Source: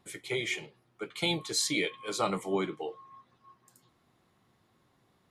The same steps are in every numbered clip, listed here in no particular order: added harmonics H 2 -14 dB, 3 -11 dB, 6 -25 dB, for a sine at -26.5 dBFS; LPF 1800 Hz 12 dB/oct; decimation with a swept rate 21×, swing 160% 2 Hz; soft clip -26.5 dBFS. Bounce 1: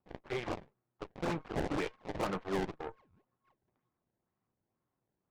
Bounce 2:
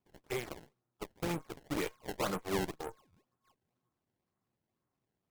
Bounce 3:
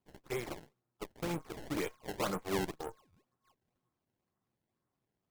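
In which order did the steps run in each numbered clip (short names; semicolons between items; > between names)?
decimation with a swept rate > LPF > added harmonics > soft clip; LPF > decimation with a swept rate > added harmonics > soft clip; added harmonics > soft clip > LPF > decimation with a swept rate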